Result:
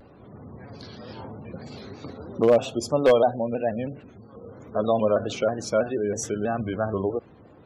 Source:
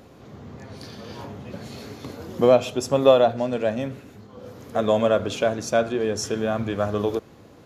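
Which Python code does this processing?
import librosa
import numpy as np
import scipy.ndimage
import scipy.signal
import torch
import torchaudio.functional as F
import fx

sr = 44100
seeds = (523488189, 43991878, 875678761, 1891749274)

y = fx.spec_gate(x, sr, threshold_db=-25, keep='strong')
y = 10.0 ** (-8.0 / 20.0) * (np.abs((y / 10.0 ** (-8.0 / 20.0) + 3.0) % 4.0 - 2.0) - 1.0)
y = fx.vibrato_shape(y, sr, shape='square', rate_hz=3.1, depth_cents=100.0)
y = y * 10.0 ** (-2.0 / 20.0)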